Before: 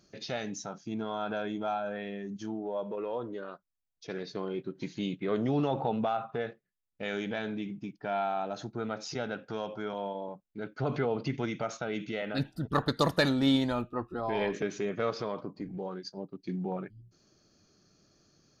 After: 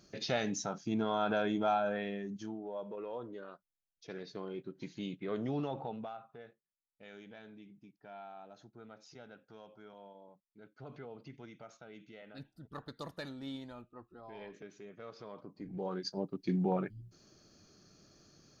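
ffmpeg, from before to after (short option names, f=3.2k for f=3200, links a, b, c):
-af "volume=23dB,afade=t=out:st=1.83:d=0.75:silence=0.354813,afade=t=out:st=5.53:d=0.73:silence=0.281838,afade=t=in:st=15.07:d=0.5:silence=0.375837,afade=t=in:st=15.57:d=0.52:silence=0.237137"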